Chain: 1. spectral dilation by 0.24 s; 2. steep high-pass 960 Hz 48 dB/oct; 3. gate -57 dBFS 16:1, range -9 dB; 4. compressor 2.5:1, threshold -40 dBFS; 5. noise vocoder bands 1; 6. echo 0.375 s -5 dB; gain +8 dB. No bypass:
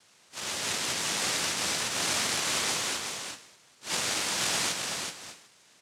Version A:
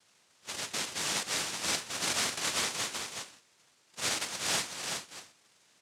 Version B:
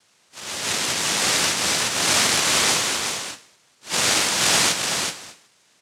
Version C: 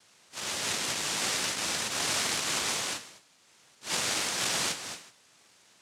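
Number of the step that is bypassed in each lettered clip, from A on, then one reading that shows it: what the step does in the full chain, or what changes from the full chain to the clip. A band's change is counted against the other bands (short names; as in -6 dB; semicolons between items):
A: 1, crest factor change +3.5 dB; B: 4, mean gain reduction 7.0 dB; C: 6, momentary loudness spread change -3 LU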